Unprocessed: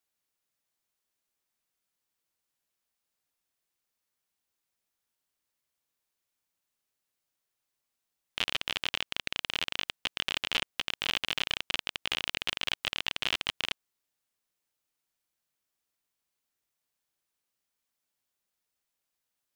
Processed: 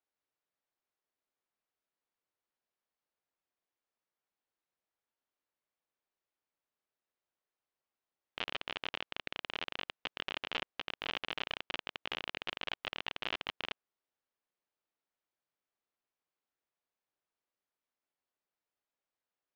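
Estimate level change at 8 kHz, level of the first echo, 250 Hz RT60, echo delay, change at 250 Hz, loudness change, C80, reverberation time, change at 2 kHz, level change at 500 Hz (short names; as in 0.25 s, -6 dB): -19.0 dB, none, none, none, -4.0 dB, -8.0 dB, none, none, -6.5 dB, -1.5 dB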